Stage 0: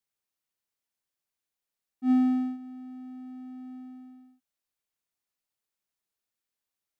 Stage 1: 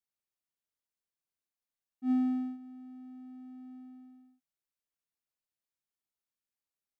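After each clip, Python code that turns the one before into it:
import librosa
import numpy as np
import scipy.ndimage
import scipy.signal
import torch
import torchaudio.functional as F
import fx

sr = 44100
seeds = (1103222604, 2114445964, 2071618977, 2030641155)

y = fx.low_shelf(x, sr, hz=340.0, db=3.5)
y = y * 10.0 ** (-8.0 / 20.0)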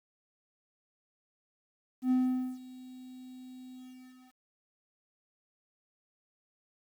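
y = fx.quant_dither(x, sr, seeds[0], bits=10, dither='none')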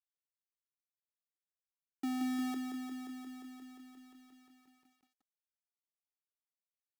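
y = fx.schmitt(x, sr, flips_db=-37.5)
y = fx.filter_sweep_highpass(y, sr, from_hz=170.0, to_hz=620.0, start_s=0.44, end_s=3.97, q=4.4)
y = fx.echo_crushed(y, sr, ms=176, feedback_pct=80, bits=12, wet_db=-6.5)
y = y * 10.0 ** (1.5 / 20.0)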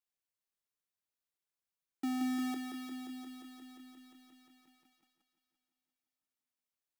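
y = fx.echo_feedback(x, sr, ms=346, feedback_pct=48, wet_db=-12.5)
y = y * 10.0 ** (1.0 / 20.0)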